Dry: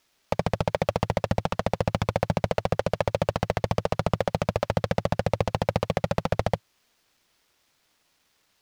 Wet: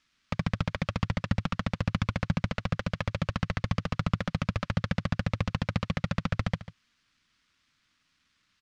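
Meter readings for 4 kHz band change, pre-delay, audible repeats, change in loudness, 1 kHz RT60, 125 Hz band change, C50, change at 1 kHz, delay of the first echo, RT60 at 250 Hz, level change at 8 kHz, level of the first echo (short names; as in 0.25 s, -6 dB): -2.0 dB, none, 1, -4.0 dB, none, -1.0 dB, none, -8.5 dB, 0.145 s, none, -7.0 dB, -15.0 dB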